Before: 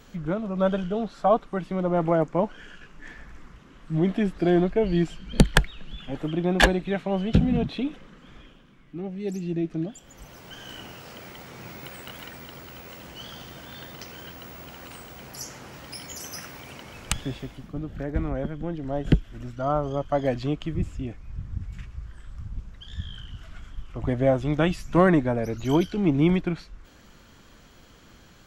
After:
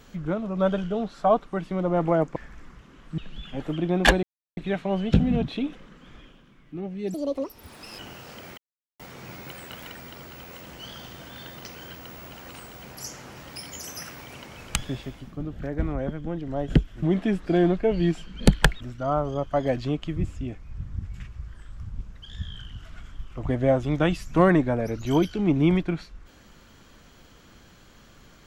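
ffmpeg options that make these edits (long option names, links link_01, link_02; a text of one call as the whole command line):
ffmpeg -i in.wav -filter_complex "[0:a]asplit=9[link_01][link_02][link_03][link_04][link_05][link_06][link_07][link_08][link_09];[link_01]atrim=end=2.362[link_10];[link_02]atrim=start=3.128:end=3.952[link_11];[link_03]atrim=start=5.728:end=6.78,asetpts=PTS-STARTPTS,afade=type=out:start_time=1.048:duration=0.004:curve=hsin,apad=pad_dur=0.34[link_12];[link_04]atrim=start=6.78:end=9.354,asetpts=PTS-STARTPTS,afade=type=in:duration=0.004:curve=hsin[link_13];[link_05]atrim=start=9.35:end=10.77,asetpts=PTS-STARTPTS,asetrate=74088,aresample=44100[link_14];[link_06]atrim=start=10.766:end=11.36,asetpts=PTS-STARTPTS,afade=type=out:start_time=0.59:duration=0.004:curve=hsin,apad=pad_dur=0.42[link_15];[link_07]atrim=start=11.36:end=19.392,asetpts=PTS-STARTPTS,afade=type=in:duration=0.004:curve=hsin[link_16];[link_08]atrim=start=3.948:end=5.732[link_17];[link_09]atrim=start=19.388[link_18];[link_10][link_11]acrossfade=duration=0.004:curve1=hsin:curve2=hsin[link_19];[link_12][link_13]concat=n=2:v=0:a=1[link_20];[link_19][link_20]acrossfade=duration=0.004:curve1=hsin:curve2=hsin[link_21];[link_21][link_14]acrossfade=duration=0.004:curve1=hsin:curve2=hsin[link_22];[link_15][link_16]concat=n=2:v=0:a=1[link_23];[link_22][link_23]acrossfade=duration=0.004:curve1=hsin:curve2=hsin[link_24];[link_24][link_17]acrossfade=duration=0.004:curve1=hsin:curve2=hsin[link_25];[link_25][link_18]acrossfade=duration=0.004:curve1=hsin:curve2=hsin" out.wav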